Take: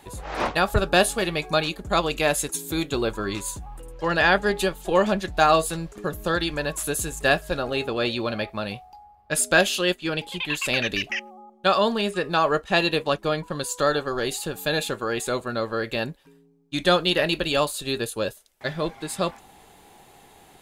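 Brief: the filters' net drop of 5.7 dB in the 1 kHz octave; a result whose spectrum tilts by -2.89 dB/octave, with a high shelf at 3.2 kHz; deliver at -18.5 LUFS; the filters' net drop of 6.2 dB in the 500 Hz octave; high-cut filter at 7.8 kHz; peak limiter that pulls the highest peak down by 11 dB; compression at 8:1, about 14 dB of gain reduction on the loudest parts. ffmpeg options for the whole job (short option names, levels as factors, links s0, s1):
-af "lowpass=7800,equalizer=f=500:t=o:g=-6,equalizer=f=1000:t=o:g=-7,highshelf=f=3200:g=7,acompressor=threshold=0.0355:ratio=8,volume=7.5,alimiter=limit=0.422:level=0:latency=1"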